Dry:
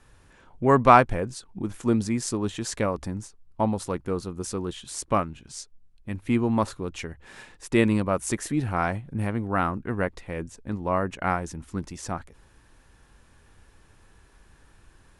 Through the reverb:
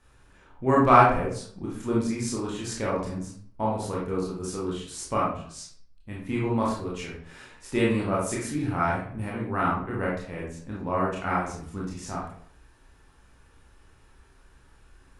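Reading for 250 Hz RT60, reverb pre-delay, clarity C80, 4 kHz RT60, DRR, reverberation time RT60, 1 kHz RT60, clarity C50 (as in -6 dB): 0.55 s, 21 ms, 7.5 dB, 0.40 s, -5.5 dB, 0.60 s, 0.55 s, 2.0 dB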